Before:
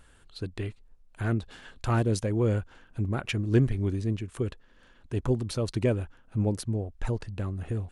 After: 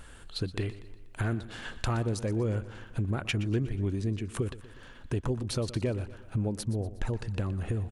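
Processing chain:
downward compressor 4 to 1, threshold −37 dBFS, peak gain reduction 17 dB
repeating echo 121 ms, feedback 51%, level −15.5 dB
level +8 dB

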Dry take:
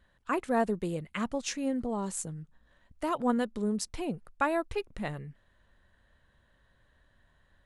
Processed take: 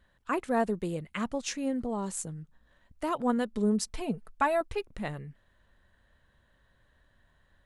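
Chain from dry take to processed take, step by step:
0:03.53–0:04.61: comb filter 4.6 ms, depth 63%

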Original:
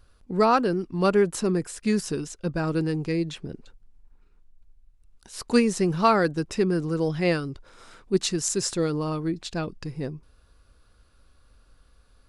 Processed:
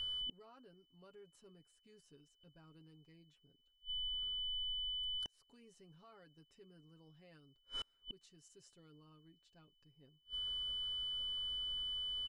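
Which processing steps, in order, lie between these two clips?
brickwall limiter −16.5 dBFS, peak gain reduction 10 dB
comb filter 7.2 ms, depth 60%
steady tone 3,000 Hz −37 dBFS
gate with flip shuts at −32 dBFS, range −36 dB
level −1.5 dB

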